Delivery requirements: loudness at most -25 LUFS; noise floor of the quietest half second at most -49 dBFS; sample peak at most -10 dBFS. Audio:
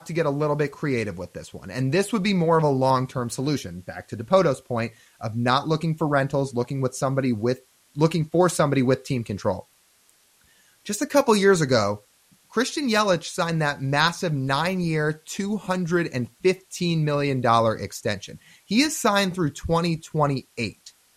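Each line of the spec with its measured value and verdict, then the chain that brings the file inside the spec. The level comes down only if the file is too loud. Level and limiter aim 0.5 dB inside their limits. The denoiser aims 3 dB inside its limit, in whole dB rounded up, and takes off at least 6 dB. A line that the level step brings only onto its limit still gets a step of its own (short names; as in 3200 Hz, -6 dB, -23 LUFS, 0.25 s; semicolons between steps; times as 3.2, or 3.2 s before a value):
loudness -23.5 LUFS: fail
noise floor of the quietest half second -61 dBFS: OK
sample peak -5.5 dBFS: fail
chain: gain -2 dB; limiter -10.5 dBFS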